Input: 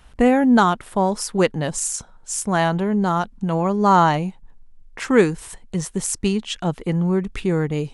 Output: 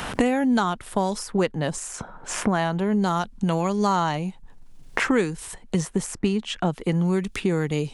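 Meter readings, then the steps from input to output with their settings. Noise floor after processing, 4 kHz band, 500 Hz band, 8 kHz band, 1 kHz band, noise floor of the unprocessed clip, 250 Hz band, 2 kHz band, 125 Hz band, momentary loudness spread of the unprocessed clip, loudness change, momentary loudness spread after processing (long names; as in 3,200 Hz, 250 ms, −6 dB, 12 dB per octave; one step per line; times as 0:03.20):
−47 dBFS, −2.0 dB, −4.5 dB, −6.5 dB, −6.0 dB, −47 dBFS, −3.5 dB, −2.5 dB, −3.0 dB, 11 LU, −4.5 dB, 8 LU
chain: multiband upward and downward compressor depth 100%
level −4.5 dB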